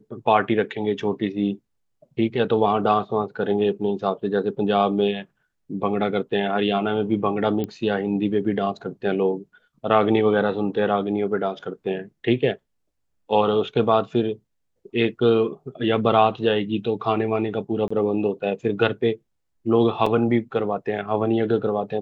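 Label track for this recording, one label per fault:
7.640000	7.640000	click −16 dBFS
17.880000	17.910000	drop-out 25 ms
20.060000	20.060000	drop-out 4.1 ms

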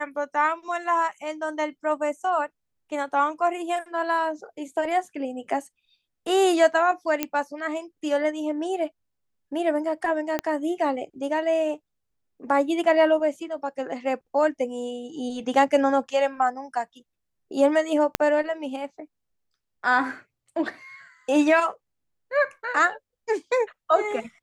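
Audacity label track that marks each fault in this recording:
7.230000	7.230000	click −8 dBFS
10.390000	10.390000	click −11 dBFS
18.150000	18.150000	click −6 dBFS

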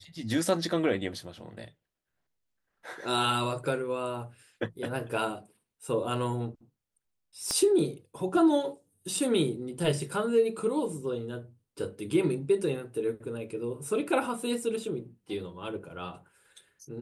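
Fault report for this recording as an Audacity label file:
7.510000	7.510000	click −16 dBFS

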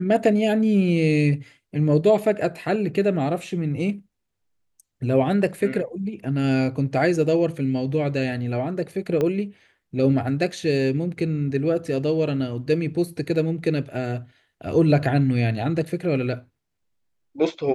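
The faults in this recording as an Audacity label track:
9.210000	9.210000	click −13 dBFS

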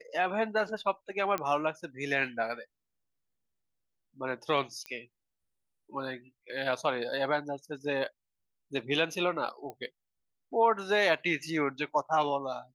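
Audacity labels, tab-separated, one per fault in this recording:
1.380000	1.380000	click −17 dBFS
4.860000	4.860000	click −24 dBFS
9.700000	9.700000	click −28 dBFS

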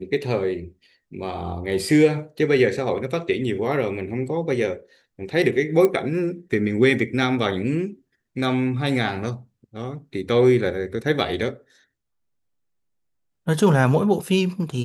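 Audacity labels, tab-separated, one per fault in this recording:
5.850000	5.850000	click −9 dBFS

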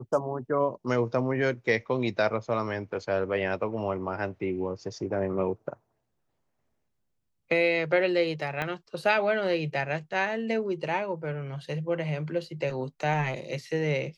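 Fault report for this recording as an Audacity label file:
8.620000	8.620000	click −17 dBFS

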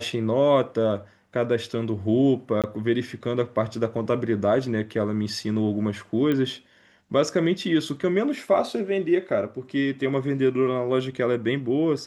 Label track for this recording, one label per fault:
2.620000	2.640000	drop-out 17 ms
6.320000	6.320000	click −15 dBFS

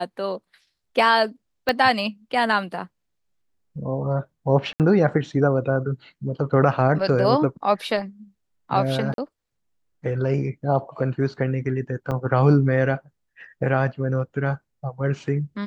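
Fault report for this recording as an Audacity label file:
1.690000	1.690000	click −9 dBFS
4.730000	4.800000	drop-out 68 ms
9.140000	9.180000	drop-out 42 ms
12.110000	12.120000	drop-out 6.9 ms

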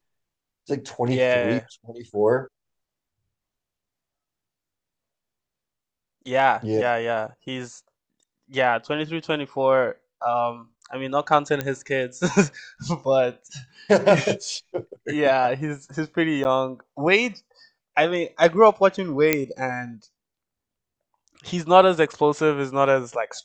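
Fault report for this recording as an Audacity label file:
11.610000	11.610000	click −11 dBFS
16.440000	16.450000	drop-out 9.7 ms
19.330000	19.330000	click −3 dBFS

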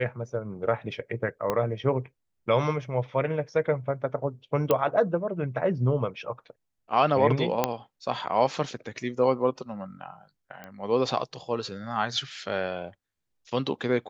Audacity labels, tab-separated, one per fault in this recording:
1.500000	1.500000	click −13 dBFS
4.710000	4.710000	click −10 dBFS
7.640000	7.640000	click −8 dBFS
10.640000	10.640000	click −26 dBFS

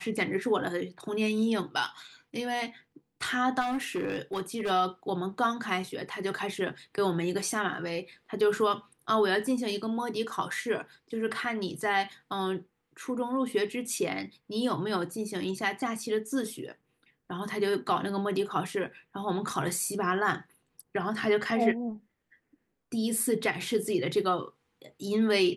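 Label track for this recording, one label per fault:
3.600000	4.710000	clipping −27 dBFS

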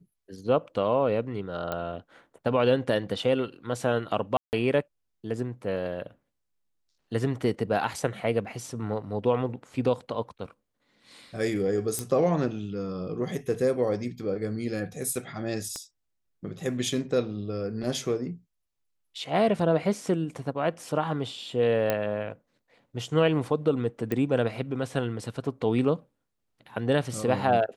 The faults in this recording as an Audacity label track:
1.720000	1.720000	click −17 dBFS
4.370000	4.530000	drop-out 159 ms
11.990000	11.990000	click −15 dBFS
15.760000	15.760000	click −22 dBFS
21.900000	21.900000	click −11 dBFS
24.120000	24.120000	click −16 dBFS

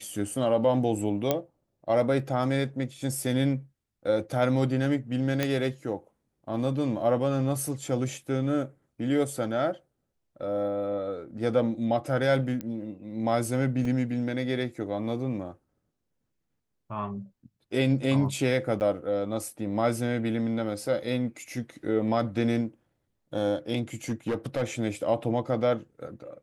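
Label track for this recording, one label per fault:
1.310000	1.310000	click −10 dBFS
5.430000	5.430000	click −11 dBFS
12.610000	12.610000	click −21 dBFS
13.850000	13.850000	drop-out 2.2 ms
18.800000	18.810000	drop-out 9.5 ms
24.090000	24.630000	clipping −23.5 dBFS

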